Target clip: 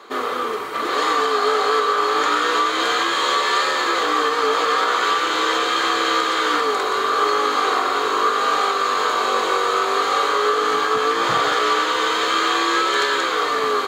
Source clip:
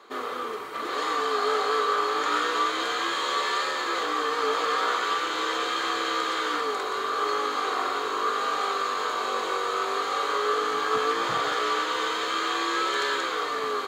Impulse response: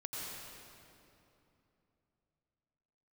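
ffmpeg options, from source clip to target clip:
-af "alimiter=limit=-17dB:level=0:latency=1:release=240,volume=8.5dB"

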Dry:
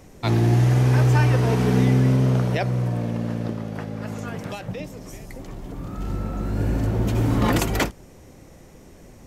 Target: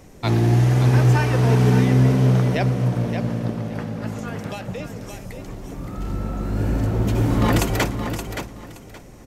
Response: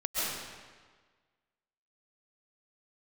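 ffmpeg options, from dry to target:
-filter_complex "[0:a]aecho=1:1:572|1144|1716:0.398|0.0876|0.0193,asplit=2[link_01][link_02];[1:a]atrim=start_sample=2205,atrim=end_sample=6174,adelay=118[link_03];[link_02][link_03]afir=irnorm=-1:irlink=0,volume=-22.5dB[link_04];[link_01][link_04]amix=inputs=2:normalize=0,volume=1dB"

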